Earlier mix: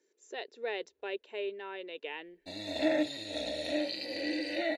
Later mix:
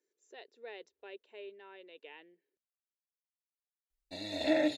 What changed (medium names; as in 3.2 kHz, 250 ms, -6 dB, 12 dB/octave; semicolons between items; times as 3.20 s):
speech -11.0 dB; background: entry +1.65 s